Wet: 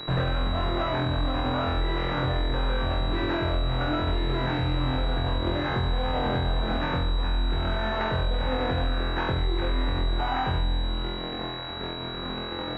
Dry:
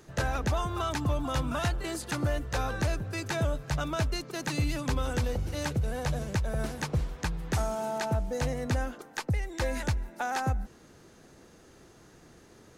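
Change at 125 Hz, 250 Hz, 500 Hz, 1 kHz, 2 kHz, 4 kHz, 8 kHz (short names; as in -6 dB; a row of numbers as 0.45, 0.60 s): +3.0 dB, +4.5 dB, +4.0 dB, +5.5 dB, +4.0 dB, +9.5 dB, under -20 dB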